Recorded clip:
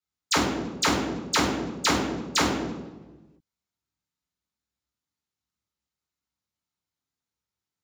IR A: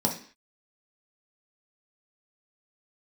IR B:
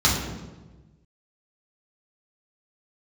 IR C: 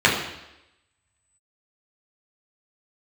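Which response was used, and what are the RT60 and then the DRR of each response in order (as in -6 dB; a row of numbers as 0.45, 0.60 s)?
B; 0.45, 1.2, 0.90 s; -0.5, -6.5, -4.5 dB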